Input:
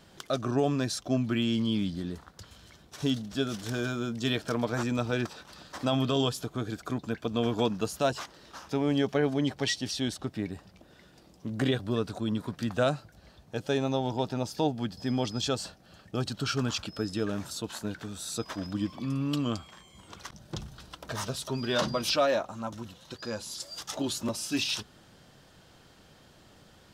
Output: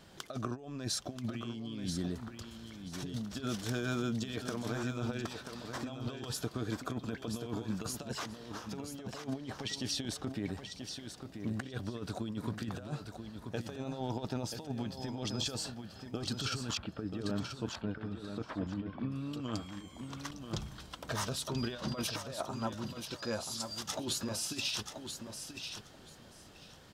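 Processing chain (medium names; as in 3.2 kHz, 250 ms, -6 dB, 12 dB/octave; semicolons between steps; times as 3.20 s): compressor with a negative ratio -32 dBFS, ratio -0.5; 16.77–19.12 s: distance through air 470 m; feedback delay 983 ms, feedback 18%, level -7.5 dB; trim -4.5 dB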